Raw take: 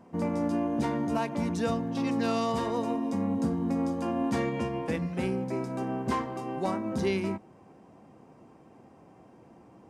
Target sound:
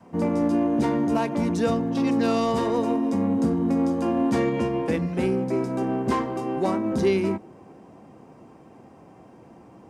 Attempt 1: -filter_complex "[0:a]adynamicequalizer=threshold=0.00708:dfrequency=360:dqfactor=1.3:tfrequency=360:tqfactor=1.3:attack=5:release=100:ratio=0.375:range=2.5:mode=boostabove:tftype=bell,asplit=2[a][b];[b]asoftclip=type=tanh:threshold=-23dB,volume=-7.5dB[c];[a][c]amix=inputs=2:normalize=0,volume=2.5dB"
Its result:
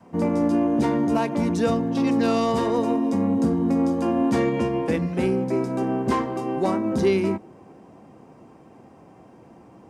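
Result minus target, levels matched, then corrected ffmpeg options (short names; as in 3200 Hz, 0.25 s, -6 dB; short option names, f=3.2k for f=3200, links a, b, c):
soft clip: distortion -8 dB
-filter_complex "[0:a]adynamicequalizer=threshold=0.00708:dfrequency=360:dqfactor=1.3:tfrequency=360:tqfactor=1.3:attack=5:release=100:ratio=0.375:range=2.5:mode=boostabove:tftype=bell,asplit=2[a][b];[b]asoftclip=type=tanh:threshold=-34dB,volume=-7.5dB[c];[a][c]amix=inputs=2:normalize=0,volume=2.5dB"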